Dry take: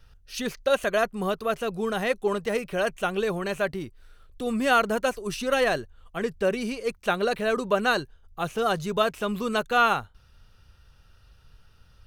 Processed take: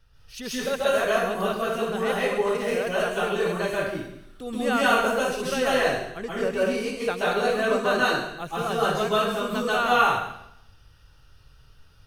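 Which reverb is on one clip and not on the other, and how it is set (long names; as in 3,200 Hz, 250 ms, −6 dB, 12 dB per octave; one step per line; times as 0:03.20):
dense smooth reverb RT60 0.76 s, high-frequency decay 1×, pre-delay 120 ms, DRR −7.5 dB
level −6 dB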